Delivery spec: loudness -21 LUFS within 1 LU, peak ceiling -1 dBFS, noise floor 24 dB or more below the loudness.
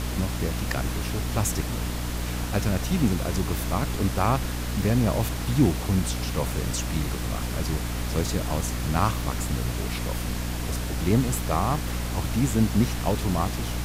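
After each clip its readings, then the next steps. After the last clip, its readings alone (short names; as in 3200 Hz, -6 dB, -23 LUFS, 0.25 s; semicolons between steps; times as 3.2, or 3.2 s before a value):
hum 60 Hz; harmonics up to 300 Hz; hum level -27 dBFS; noise floor -30 dBFS; noise floor target -51 dBFS; loudness -26.5 LUFS; peak -8.0 dBFS; loudness target -21.0 LUFS
-> notches 60/120/180/240/300 Hz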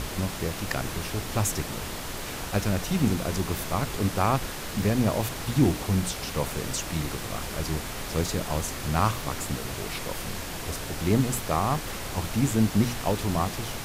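hum none; noise floor -35 dBFS; noise floor target -52 dBFS
-> noise print and reduce 17 dB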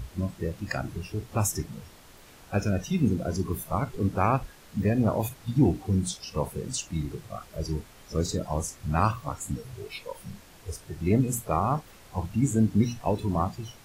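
noise floor -52 dBFS; noise floor target -53 dBFS
-> noise print and reduce 6 dB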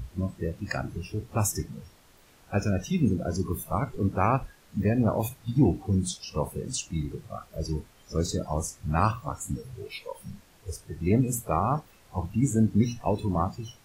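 noise floor -57 dBFS; loudness -28.5 LUFS; peak -9.0 dBFS; loudness target -21.0 LUFS
-> gain +7.5 dB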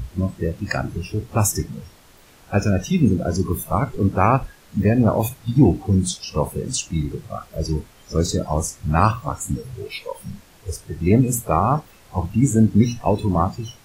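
loudness -21.0 LUFS; peak -1.5 dBFS; noise floor -50 dBFS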